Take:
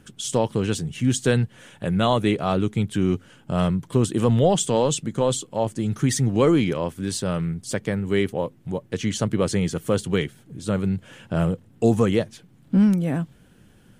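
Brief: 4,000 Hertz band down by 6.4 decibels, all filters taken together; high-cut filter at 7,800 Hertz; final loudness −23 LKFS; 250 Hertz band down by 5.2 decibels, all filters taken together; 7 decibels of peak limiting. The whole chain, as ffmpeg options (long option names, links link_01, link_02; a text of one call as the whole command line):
ffmpeg -i in.wav -af "lowpass=7800,equalizer=frequency=250:width_type=o:gain=-7.5,equalizer=frequency=4000:width_type=o:gain=-8.5,volume=5dB,alimiter=limit=-10.5dB:level=0:latency=1" out.wav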